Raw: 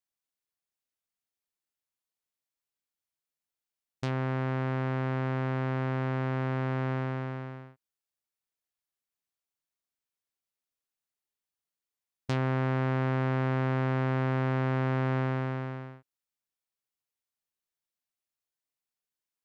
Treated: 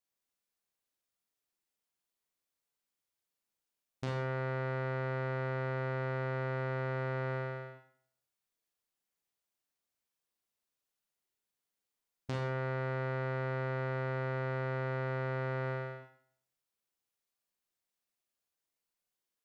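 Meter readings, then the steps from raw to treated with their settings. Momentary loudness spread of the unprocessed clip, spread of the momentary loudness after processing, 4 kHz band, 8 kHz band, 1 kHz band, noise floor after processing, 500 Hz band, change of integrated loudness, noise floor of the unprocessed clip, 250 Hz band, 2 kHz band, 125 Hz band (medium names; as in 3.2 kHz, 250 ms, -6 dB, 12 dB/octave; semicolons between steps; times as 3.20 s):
9 LU, 5 LU, -5.5 dB, no reading, -5.0 dB, under -85 dBFS, -2.0 dB, -6.0 dB, under -85 dBFS, -11.0 dB, -2.5 dB, -7.0 dB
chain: peaking EQ 430 Hz +2.5 dB 1.8 oct; peak limiter -26.5 dBFS, peak gain reduction 8 dB; Schroeder reverb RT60 0.6 s, combs from 32 ms, DRR 0.5 dB; trim -1 dB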